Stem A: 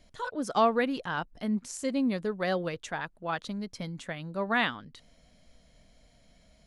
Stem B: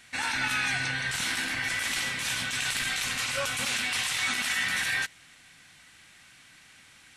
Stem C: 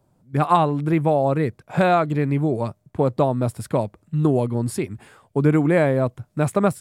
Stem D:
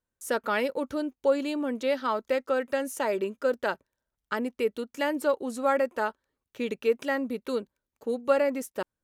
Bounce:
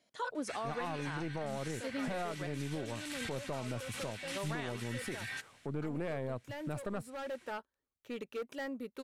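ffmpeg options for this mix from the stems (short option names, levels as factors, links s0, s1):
-filter_complex "[0:a]agate=range=0.398:threshold=0.00224:ratio=16:detection=peak,highpass=260,volume=0.891,asplit=3[s0][s1][s2];[s0]atrim=end=2.47,asetpts=PTS-STARTPTS,afade=t=out:st=2.466:d=0.004:c=hsin[s3];[s1]atrim=start=2.47:end=4.23,asetpts=PTS-STARTPTS,volume=0[s4];[s2]atrim=start=4.23,asetpts=PTS-STARTPTS,afade=t=in:d=0.004:c=hsin[s5];[s3][s4][s5]concat=n=3:v=0:a=1[s6];[1:a]adelay=350,volume=0.335[s7];[2:a]aeval=exprs='(tanh(5.01*val(0)+0.65)-tanh(0.65))/5.01':c=same,adelay=300,volume=0.562[s8];[3:a]asoftclip=type=hard:threshold=0.0562,adelay=1500,volume=0.316[s9];[s6][s7][s8][s9]amix=inputs=4:normalize=0,alimiter=level_in=1.68:limit=0.0631:level=0:latency=1:release=416,volume=0.596"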